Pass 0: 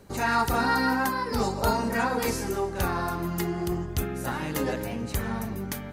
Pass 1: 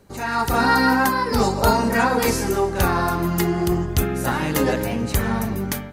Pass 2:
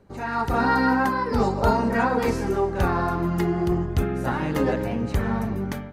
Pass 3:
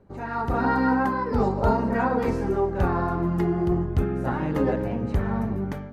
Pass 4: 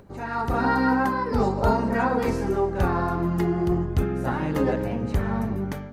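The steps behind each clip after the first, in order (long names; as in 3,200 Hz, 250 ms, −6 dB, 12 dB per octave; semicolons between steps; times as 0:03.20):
automatic gain control gain up to 10 dB; level −1.5 dB
low-pass filter 1,600 Hz 6 dB per octave; level −2 dB
high-shelf EQ 2,200 Hz −12 dB; hum removal 232.1 Hz, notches 31
high-shelf EQ 3,100 Hz +8.5 dB; upward compression, threshold −44 dBFS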